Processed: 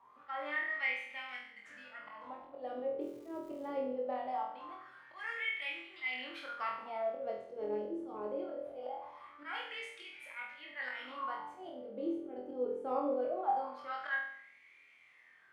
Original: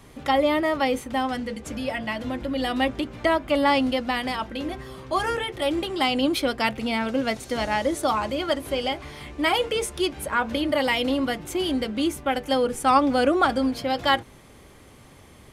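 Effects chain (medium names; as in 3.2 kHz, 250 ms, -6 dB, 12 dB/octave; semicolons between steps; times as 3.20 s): wah-wah 0.22 Hz 390–2300 Hz, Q 10; slow attack 124 ms; 3.00–3.66 s: crackle 210 per s -55 dBFS; on a send: flutter echo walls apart 4.1 m, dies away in 0.62 s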